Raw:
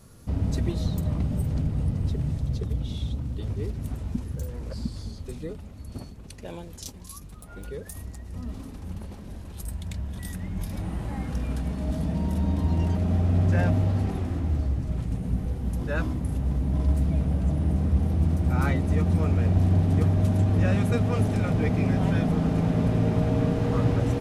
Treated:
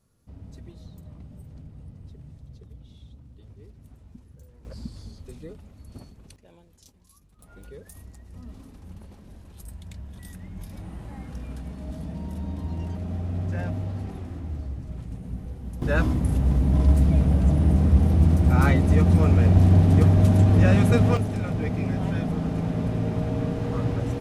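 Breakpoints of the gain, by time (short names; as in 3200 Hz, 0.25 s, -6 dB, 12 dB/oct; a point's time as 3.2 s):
-17.5 dB
from 4.65 s -5.5 dB
from 6.36 s -16 dB
from 7.39 s -7 dB
from 15.82 s +5 dB
from 21.17 s -3 dB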